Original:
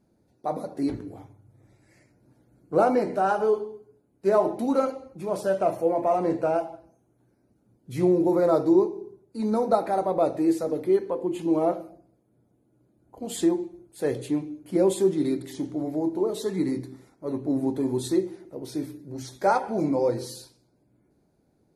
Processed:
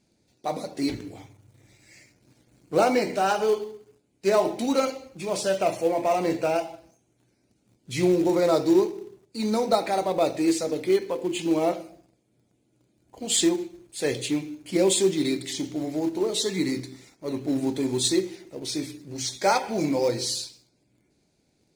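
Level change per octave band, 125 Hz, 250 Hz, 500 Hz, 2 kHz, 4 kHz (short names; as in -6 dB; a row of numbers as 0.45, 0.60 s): -0.5, -0.5, -0.5, +5.5, +14.0 dB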